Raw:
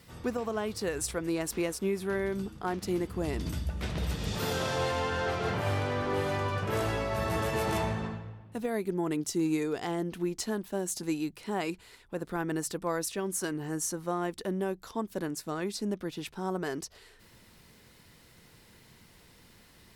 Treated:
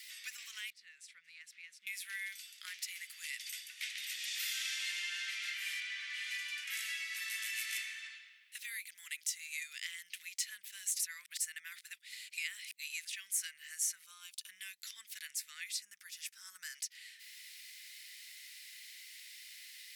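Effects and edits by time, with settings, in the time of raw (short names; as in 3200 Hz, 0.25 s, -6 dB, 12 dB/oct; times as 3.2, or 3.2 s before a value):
0.7–1.87 band-pass 220 Hz, Q 0.89
2.87–4.75 HPF 570 Hz -> 160 Hz
5.8–6.31 air absorption 60 m
7.01–10.03 HPF 250 Hz
10.99–13.09 reverse
14.04–14.49 fixed phaser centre 790 Hz, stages 4
15.82–16.75 band shelf 2900 Hz -9.5 dB 1.3 oct
whole clip: elliptic high-pass 2000 Hz, stop band 60 dB; dynamic EQ 4400 Hz, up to -4 dB, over -56 dBFS, Q 1.5; three-band squash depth 40%; gain +4 dB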